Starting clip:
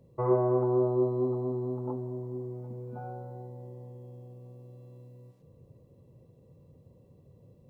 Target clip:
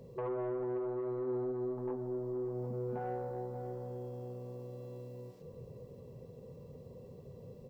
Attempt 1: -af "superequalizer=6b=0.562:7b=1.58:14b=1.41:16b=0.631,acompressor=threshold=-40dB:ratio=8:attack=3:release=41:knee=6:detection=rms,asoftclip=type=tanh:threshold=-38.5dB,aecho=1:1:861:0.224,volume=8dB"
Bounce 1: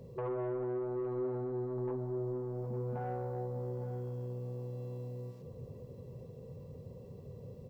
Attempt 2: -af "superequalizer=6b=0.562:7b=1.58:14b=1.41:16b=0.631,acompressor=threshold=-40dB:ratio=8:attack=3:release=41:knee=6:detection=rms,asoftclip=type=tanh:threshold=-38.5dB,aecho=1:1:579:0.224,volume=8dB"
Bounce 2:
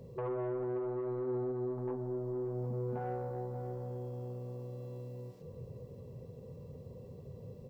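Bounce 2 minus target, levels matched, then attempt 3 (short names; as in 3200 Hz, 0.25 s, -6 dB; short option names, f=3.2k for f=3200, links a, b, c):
125 Hz band +4.5 dB
-af "superequalizer=6b=0.562:7b=1.58:14b=1.41:16b=0.631,acompressor=threshold=-40dB:ratio=8:attack=3:release=41:knee=6:detection=rms,equalizer=f=90:t=o:w=1.4:g=-6,asoftclip=type=tanh:threshold=-38.5dB,aecho=1:1:579:0.224,volume=8dB"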